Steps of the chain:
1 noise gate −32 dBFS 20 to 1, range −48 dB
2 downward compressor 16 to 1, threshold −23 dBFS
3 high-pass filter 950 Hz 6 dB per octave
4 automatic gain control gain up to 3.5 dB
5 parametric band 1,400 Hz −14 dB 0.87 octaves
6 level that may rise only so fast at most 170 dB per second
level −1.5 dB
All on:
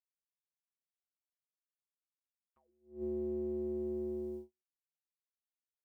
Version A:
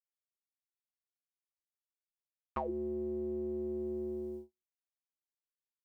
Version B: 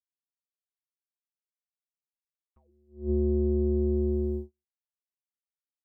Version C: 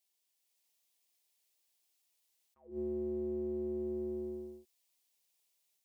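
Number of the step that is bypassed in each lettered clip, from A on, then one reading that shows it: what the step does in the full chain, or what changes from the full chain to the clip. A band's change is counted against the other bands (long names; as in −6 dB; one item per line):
6, change in crest factor +10.0 dB
3, change in integrated loudness +11.0 LU
1, change in momentary loudness spread +2 LU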